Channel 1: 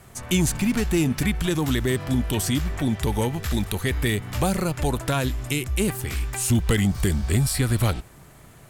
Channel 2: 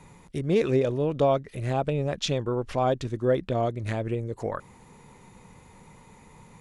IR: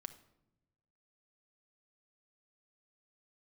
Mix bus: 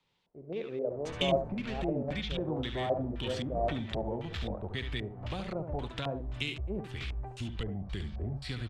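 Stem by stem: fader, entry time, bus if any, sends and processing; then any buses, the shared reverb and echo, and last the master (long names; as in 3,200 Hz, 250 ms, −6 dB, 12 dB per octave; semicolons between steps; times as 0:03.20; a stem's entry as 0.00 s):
−3.0 dB, 0.90 s, no send, echo send −8 dB, downward compressor 5 to 1, threshold −32 dBFS, peak gain reduction 14.5 dB
−18.5 dB, 0.00 s, no send, echo send −7.5 dB, parametric band 680 Hz +5.5 dB 2.2 octaves; bit-depth reduction 8 bits, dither triangular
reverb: not used
echo: single-tap delay 72 ms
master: auto-filter low-pass square 1.9 Hz 670–3,400 Hz; multiband upward and downward expander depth 40%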